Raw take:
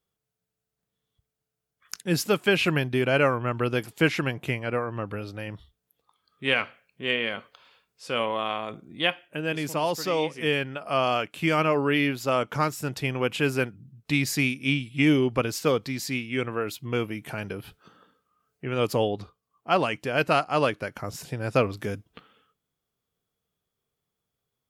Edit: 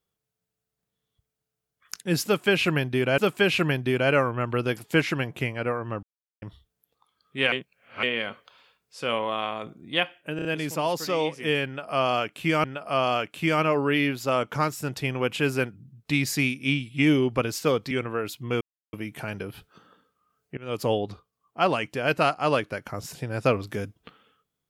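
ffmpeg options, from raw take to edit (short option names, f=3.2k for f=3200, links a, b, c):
-filter_complex "[0:a]asplit=13[a][b][c][d][e][f][g][h][i][j][k][l][m];[a]atrim=end=3.182[n];[b]atrim=start=2.248:end=5.1,asetpts=PTS-STARTPTS,afade=t=out:st=2.848:d=0.004:c=hsin[o];[c]atrim=start=5.1:end=5.49,asetpts=PTS-STARTPTS,volume=0[p];[d]atrim=start=5.49:end=6.592,asetpts=PTS-STARTPTS,afade=t=in:d=0.004:c=hsin[q];[e]atrim=start=6.588:end=7.102,asetpts=PTS-STARTPTS,areverse[r];[f]atrim=start=7.098:end=9.462[s];[g]atrim=start=9.428:end=9.462[t];[h]atrim=start=9.428:end=9.462[u];[i]atrim=start=9.428:end=11.622[v];[j]atrim=start=10.638:end=15.912[w];[k]atrim=start=16.328:end=17.03,asetpts=PTS-STARTPTS,afade=t=out:st=0.698:d=0.004:c=hsin,apad=pad_dur=0.32[x];[l]atrim=start=17.03:end=18.67,asetpts=PTS-STARTPTS,afade=t=in:d=0.004:c=hsin,afade=t=out:st=1.636:d=0.004:c=hsin:silence=0.0794328[y];[m]atrim=start=18.67,asetpts=PTS-STARTPTS,afade=t=in:d=0.33:silence=0.0794328[z];[o][p][q]concat=n=3:v=0:a=1[aa];[n][aa]acrossfade=d=0.004:c1=hsin:c2=hsin[ab];[ab][r]acrossfade=d=0.004:c1=hsin:c2=hsin[ac];[ac][s]acrossfade=d=0.004:c1=hsin:c2=hsin[ad];[ad][t]acrossfade=d=0.004:c1=hsin:c2=hsin[ae];[ae][u]acrossfade=d=0.004:c1=hsin:c2=hsin[af];[af][v]acrossfade=d=0.004:c1=hsin:c2=hsin[ag];[ag][w]acrossfade=d=0.004:c1=hsin:c2=hsin[ah];[x][y][z]concat=n=3:v=0:a=1[ai];[ah][ai]acrossfade=d=0.004:c1=hsin:c2=hsin"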